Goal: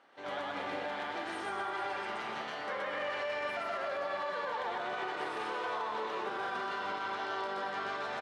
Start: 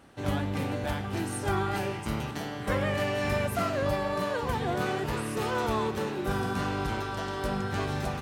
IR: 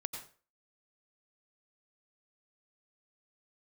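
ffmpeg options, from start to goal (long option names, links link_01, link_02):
-filter_complex "[0:a]highpass=590,lowpass=3600,bandreject=frequency=2600:width=16,aecho=1:1:323:0.335,asplit=2[link_01][link_02];[1:a]atrim=start_sample=2205,adelay=124[link_03];[link_02][link_03]afir=irnorm=-1:irlink=0,volume=2.5dB[link_04];[link_01][link_04]amix=inputs=2:normalize=0,alimiter=limit=-24dB:level=0:latency=1:release=85,volume=-3.5dB"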